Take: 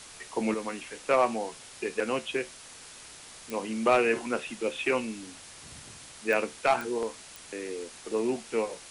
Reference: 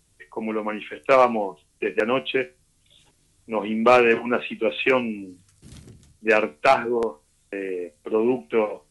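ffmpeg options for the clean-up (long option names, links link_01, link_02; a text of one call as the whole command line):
ffmpeg -i in.wav -af "adeclick=threshold=4,afwtdn=0.0056,asetnsamples=nb_out_samples=441:pad=0,asendcmd='0.54 volume volume 7.5dB',volume=0dB" out.wav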